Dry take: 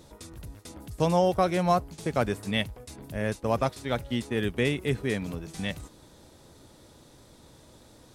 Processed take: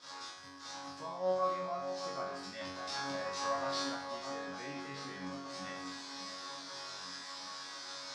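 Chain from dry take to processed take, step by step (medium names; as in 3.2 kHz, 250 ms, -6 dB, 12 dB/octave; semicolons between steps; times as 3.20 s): zero-crossing glitches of -20.5 dBFS; gate -31 dBFS, range -8 dB; tilt EQ -2.5 dB/octave; peak limiter -22.5 dBFS, peak gain reduction 13.5 dB; 2.61–3.83 s: waveshaping leveller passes 2; cabinet simulation 380–5500 Hz, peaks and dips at 420 Hz -10 dB, 1.1 kHz +10 dB, 1.6 kHz +6 dB, 2.8 kHz -5 dB, 5.1 kHz +7 dB; chord resonator F#2 fifth, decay 0.7 s; echo whose repeats swap between lows and highs 609 ms, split 2 kHz, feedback 74%, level -9 dB; trim +9.5 dB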